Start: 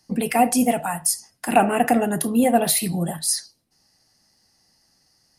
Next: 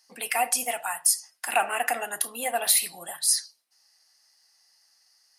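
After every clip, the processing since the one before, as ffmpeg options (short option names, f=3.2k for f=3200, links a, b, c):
-af "highpass=1.1k"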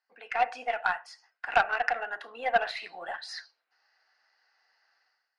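-af "highpass=360,equalizer=f=460:t=q:w=4:g=4,equalizer=f=730:t=q:w=4:g=4,equalizer=f=1.5k:t=q:w=4:g=10,equalizer=f=3.3k:t=q:w=4:g=-6,lowpass=f=3.4k:w=0.5412,lowpass=f=3.4k:w=1.3066,dynaudnorm=f=100:g=7:m=15dB,aeval=exprs='0.944*(cos(1*acos(clip(val(0)/0.944,-1,1)))-cos(1*PI/2))+0.15*(cos(3*acos(clip(val(0)/0.944,-1,1)))-cos(3*PI/2))+0.00596*(cos(8*acos(clip(val(0)/0.944,-1,1)))-cos(8*PI/2))':c=same,volume=-8dB"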